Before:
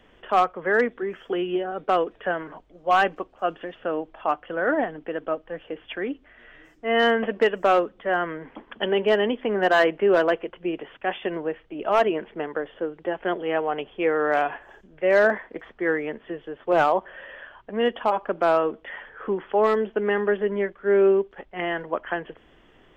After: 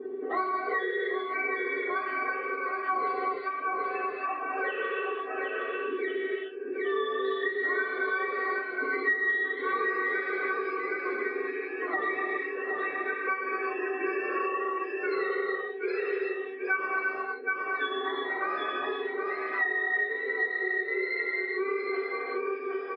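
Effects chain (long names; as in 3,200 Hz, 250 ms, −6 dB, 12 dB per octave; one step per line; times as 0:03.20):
frequency axis turned over on the octave scale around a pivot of 900 Hz
loudspeaker in its box 260–3,200 Hz, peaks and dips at 420 Hz +9 dB, 780 Hz −7 dB, 1,100 Hz +3 dB, 1,900 Hz +8 dB
low-pass that shuts in the quiet parts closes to 660 Hz, open at −15.5 dBFS
parametric band 1,300 Hz −6.5 dB 1.9 octaves
tuned comb filter 380 Hz, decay 0.17 s, harmonics all, mix 100%
on a send: single-tap delay 769 ms −7.5 dB
on the sum: reverb whose tail is shaped and stops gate 410 ms flat, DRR −4 dB
multiband upward and downward compressor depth 100%
level +4.5 dB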